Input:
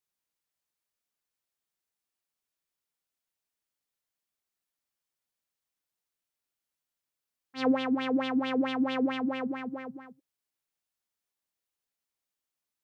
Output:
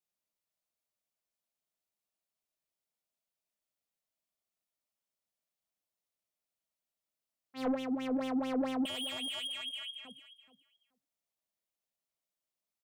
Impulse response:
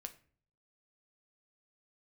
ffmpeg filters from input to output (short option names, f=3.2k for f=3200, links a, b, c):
-filter_complex "[0:a]asettb=1/sr,asplit=3[a][b][c];[a]atrim=end=7.744[d];[b]atrim=start=7.74:end=8.21,asetpts=PTS-STARTPTS,afade=t=in:d=0.004:c=qsin,afade=t=out:st=0.466:d=0.004:c=qsin,equalizer=f=960:t=o:w=1.5:g=-7[e];[c]atrim=start=8.206[f];[d][e]acrossfade=d=0.004:c1=hsin:c2=qsin[g];[g][f]acrossfade=d=0.004:c1=qsin:c2=hsin,asettb=1/sr,asplit=3[h][i][j];[h]atrim=end=8.854[k];[i]atrim=start=8.85:end=10.05,asetpts=PTS-STARTPTS,afade=t=in:d=0.004:c=qsin,afade=t=out:st=1.196:d=0.004:c=qsin,lowpass=f=3k:t=q:w=0.5098,lowpass=f=3k:t=q:w=0.6013,lowpass=f=3k:t=q:w=0.9,lowpass=f=3k:t=q:w=2.563,afreqshift=-3500[l];[j]atrim=start=10.046[m];[k][l]acrossfade=d=0.004:c1=hsin:c2=qsin[n];[n][m]acrossfade=d=0.004:c1=qsin:c2=hsin,acrossover=split=870[o][p];[p]volume=32.5dB,asoftclip=hard,volume=-32.5dB[q];[o][q]amix=inputs=2:normalize=0,equalizer=f=200:t=o:w=0.33:g=5,equalizer=f=630:t=o:w=0.33:g=9,equalizer=f=1.6k:t=o:w=0.33:g=-5,asoftclip=type=tanh:threshold=-22dB,aecho=1:1:428|856:0.2|0.0339,volume=-4.5dB"